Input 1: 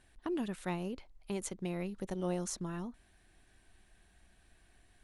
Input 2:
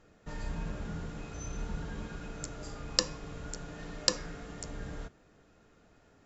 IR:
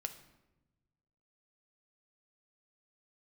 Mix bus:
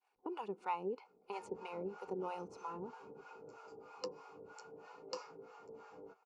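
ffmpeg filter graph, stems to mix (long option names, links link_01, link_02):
-filter_complex "[0:a]agate=range=-33dB:threshold=-59dB:ratio=3:detection=peak,volume=-2.5dB,asplit=2[link_01][link_02];[link_02]volume=-14dB[link_03];[1:a]flanger=delay=7:depth=3.9:regen=62:speed=0.48:shape=triangular,adelay=1050,volume=-4dB[link_04];[2:a]atrim=start_sample=2205[link_05];[link_03][link_05]afir=irnorm=-1:irlink=0[link_06];[link_01][link_04][link_06]amix=inputs=3:normalize=0,superequalizer=7b=3.16:9b=3.55:10b=1.78:11b=0.316:13b=0.355,acrossover=split=620[link_07][link_08];[link_07]aeval=exprs='val(0)*(1-1/2+1/2*cos(2*PI*3.1*n/s))':channel_layout=same[link_09];[link_08]aeval=exprs='val(0)*(1-1/2-1/2*cos(2*PI*3.1*n/s))':channel_layout=same[link_10];[link_09][link_10]amix=inputs=2:normalize=0,highpass=280,lowpass=4500"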